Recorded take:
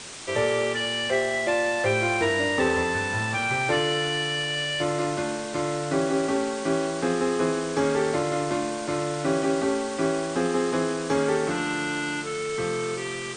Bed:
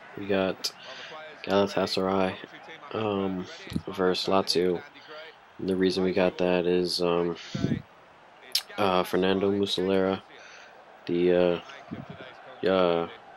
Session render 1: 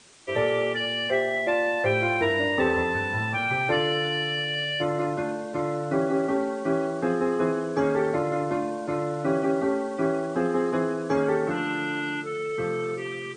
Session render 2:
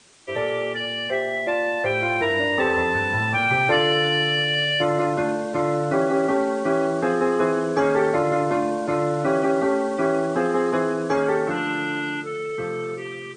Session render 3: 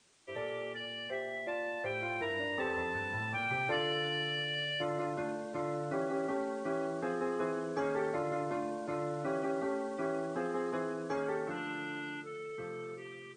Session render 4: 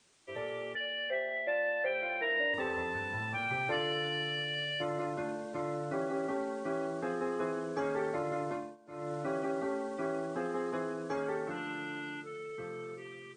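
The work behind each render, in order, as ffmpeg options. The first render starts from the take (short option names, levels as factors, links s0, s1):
-af "afftdn=nr=14:nf=-32"
-filter_complex "[0:a]acrossover=split=430[s0][s1];[s0]alimiter=level_in=1.33:limit=0.0631:level=0:latency=1:release=130,volume=0.75[s2];[s2][s1]amix=inputs=2:normalize=0,dynaudnorm=f=570:g=9:m=2.11"
-af "volume=0.2"
-filter_complex "[0:a]asettb=1/sr,asplit=3[s0][s1][s2];[s0]atrim=end=0.754[s3];[s1]atrim=start=0.75:end=2.54,asetpts=PTS-STARTPTS,afade=t=in:d=0.004:c=qsin,afade=t=out:st=1.786:d=0.004:c=qsin,highpass=f=200:w=0.5412,highpass=f=200:w=1.3066,equalizer=f=220:t=q:w=4:g=-5,equalizer=f=370:t=q:w=4:g=-9,equalizer=f=550:t=q:w=4:g=9,equalizer=f=1100:t=q:w=4:g=-9,equalizer=f=1800:t=q:w=4:g=8,equalizer=f=2900:t=q:w=4:g=4,lowpass=f=3700:w=0.5412,lowpass=f=3700:w=1.3066[s4];[s2]atrim=start=2.536[s5];[s3][s4]acrossfade=d=0.004:c1=hsin:c2=qsin[s6];[s6][s5]acrossfade=d=0.004:c1=qsin:c2=hsin,asplit=3[s7][s8][s9];[s7]atrim=end=8.77,asetpts=PTS-STARTPTS,afade=t=out:st=8.5:d=0.27:silence=0.0944061[s10];[s8]atrim=start=8.77:end=8.86,asetpts=PTS-STARTPTS,volume=0.0944[s11];[s9]atrim=start=8.86,asetpts=PTS-STARTPTS,afade=t=in:d=0.27:silence=0.0944061[s12];[s10][s11][s12]concat=n=3:v=0:a=1"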